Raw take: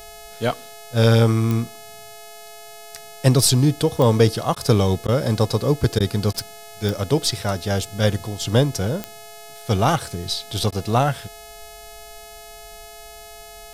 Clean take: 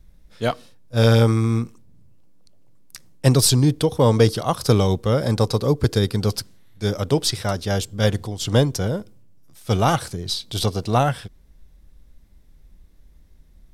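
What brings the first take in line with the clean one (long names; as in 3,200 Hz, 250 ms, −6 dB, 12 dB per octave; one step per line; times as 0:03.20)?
click removal
hum removal 425.1 Hz, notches 35
notch filter 680 Hz, Q 30
repair the gap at 0:04.55/0:05.07/0:05.99/0:06.33/0:10.71, 11 ms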